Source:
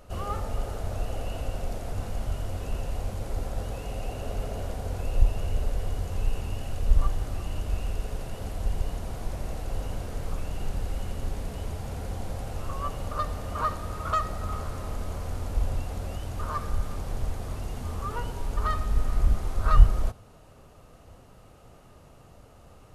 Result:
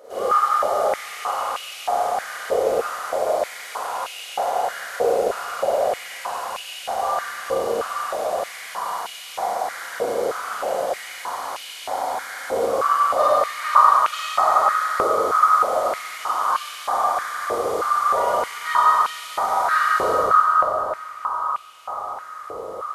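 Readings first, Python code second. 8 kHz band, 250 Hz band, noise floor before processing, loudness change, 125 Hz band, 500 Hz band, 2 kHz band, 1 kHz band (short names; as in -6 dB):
+11.5 dB, 0.0 dB, -52 dBFS, +10.5 dB, under -20 dB, +16.5 dB, +16.5 dB, +18.0 dB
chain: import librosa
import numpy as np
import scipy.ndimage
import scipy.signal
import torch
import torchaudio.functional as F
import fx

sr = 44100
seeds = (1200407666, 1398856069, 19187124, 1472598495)

y = fx.notch(x, sr, hz=2700.0, q=6.1)
y = fx.echo_bbd(y, sr, ms=433, stages=4096, feedback_pct=77, wet_db=-4.5)
y = fx.rev_schroeder(y, sr, rt60_s=2.4, comb_ms=32, drr_db=-9.0)
y = fx.filter_held_highpass(y, sr, hz=3.2, low_hz=470.0, high_hz=2700.0)
y = F.gain(torch.from_numpy(y), 1.5).numpy()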